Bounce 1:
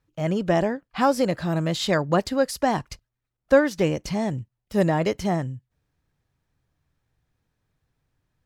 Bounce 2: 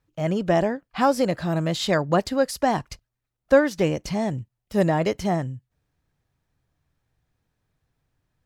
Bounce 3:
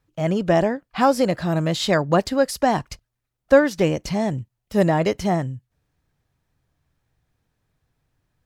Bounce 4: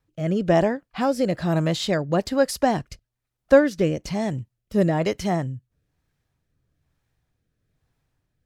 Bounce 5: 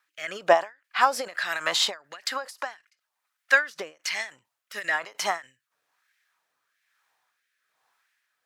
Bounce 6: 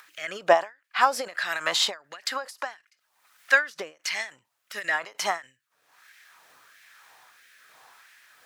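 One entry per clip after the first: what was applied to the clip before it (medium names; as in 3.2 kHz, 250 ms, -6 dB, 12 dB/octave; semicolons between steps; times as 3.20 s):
peaking EQ 690 Hz +2 dB 0.36 oct
wow and flutter 21 cents; trim +2.5 dB
rotary cabinet horn 1.1 Hz
LFO high-pass sine 1.5 Hz 880–1900 Hz; endings held to a fixed fall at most 200 dB/s; trim +6 dB
upward compressor, threshold -38 dBFS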